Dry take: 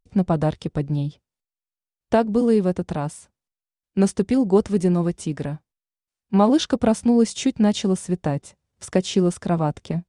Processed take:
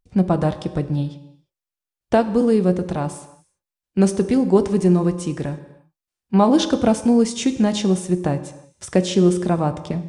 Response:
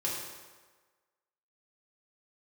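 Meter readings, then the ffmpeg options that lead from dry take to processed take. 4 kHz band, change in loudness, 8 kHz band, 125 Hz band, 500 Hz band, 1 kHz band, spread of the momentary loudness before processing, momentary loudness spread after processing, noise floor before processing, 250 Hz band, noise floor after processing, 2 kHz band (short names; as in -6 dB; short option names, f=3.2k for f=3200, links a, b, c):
+2.0 dB, +2.0 dB, +2.0 dB, +2.0 dB, +2.5 dB, +2.0 dB, 11 LU, 11 LU, under -85 dBFS, +2.0 dB, under -85 dBFS, +2.0 dB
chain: -filter_complex "[0:a]asplit=2[a][b];[1:a]atrim=start_sample=2205,afade=t=out:st=0.4:d=0.01,atrim=end_sample=18081[c];[b][c]afir=irnorm=-1:irlink=0,volume=-12dB[d];[a][d]amix=inputs=2:normalize=0"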